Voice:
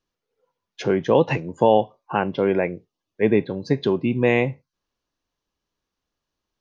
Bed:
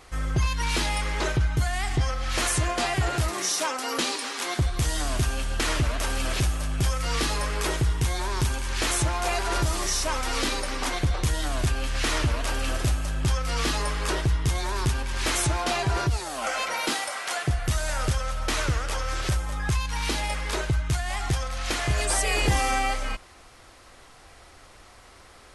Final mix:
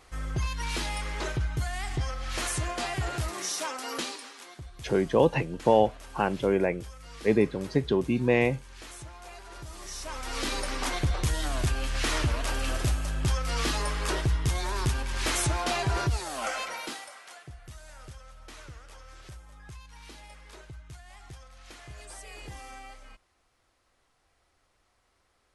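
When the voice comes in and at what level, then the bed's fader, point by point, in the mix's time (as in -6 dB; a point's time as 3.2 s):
4.05 s, -4.5 dB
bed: 3.98 s -6 dB
4.54 s -19.5 dB
9.56 s -19.5 dB
10.6 s -2.5 dB
16.44 s -2.5 dB
17.45 s -20.5 dB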